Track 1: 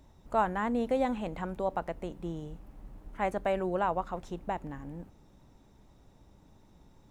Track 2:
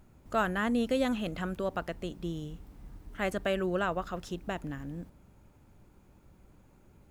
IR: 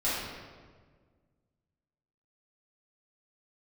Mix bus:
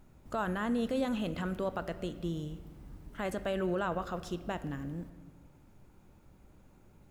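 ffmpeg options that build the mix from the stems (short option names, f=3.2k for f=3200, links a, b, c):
-filter_complex "[0:a]volume=-14dB[a];[1:a]alimiter=level_in=1dB:limit=-24dB:level=0:latency=1:release=15,volume=-1dB,volume=-1.5dB,asplit=2[b][c];[c]volume=-20.5dB[d];[2:a]atrim=start_sample=2205[e];[d][e]afir=irnorm=-1:irlink=0[f];[a][b][f]amix=inputs=3:normalize=0"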